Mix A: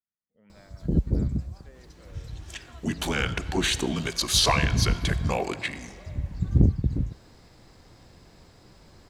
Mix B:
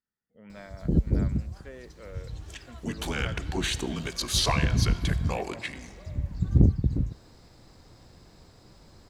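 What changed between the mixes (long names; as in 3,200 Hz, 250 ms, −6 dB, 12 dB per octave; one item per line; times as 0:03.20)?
speech +9.5 dB
second sound −4.5 dB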